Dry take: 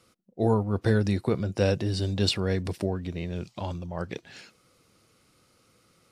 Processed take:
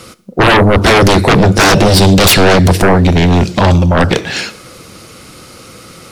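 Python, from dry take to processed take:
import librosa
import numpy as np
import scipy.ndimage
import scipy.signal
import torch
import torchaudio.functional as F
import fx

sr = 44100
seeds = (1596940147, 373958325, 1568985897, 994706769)

y = fx.rev_double_slope(x, sr, seeds[0], early_s=0.6, late_s=2.1, knee_db=-18, drr_db=15.0)
y = fx.fold_sine(y, sr, drive_db=18, ceiling_db=-10.0)
y = y * 10.0 ** (6.5 / 20.0)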